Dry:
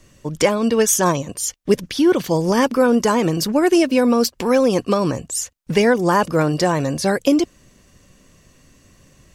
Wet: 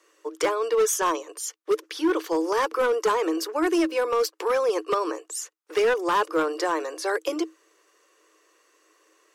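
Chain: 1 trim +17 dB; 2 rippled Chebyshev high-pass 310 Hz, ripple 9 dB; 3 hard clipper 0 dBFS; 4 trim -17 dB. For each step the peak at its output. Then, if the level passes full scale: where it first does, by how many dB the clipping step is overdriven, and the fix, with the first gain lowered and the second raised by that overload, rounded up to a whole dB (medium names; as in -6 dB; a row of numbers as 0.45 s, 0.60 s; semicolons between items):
+14.0 dBFS, +8.5 dBFS, 0.0 dBFS, -17.0 dBFS; step 1, 8.5 dB; step 1 +8 dB, step 4 -8 dB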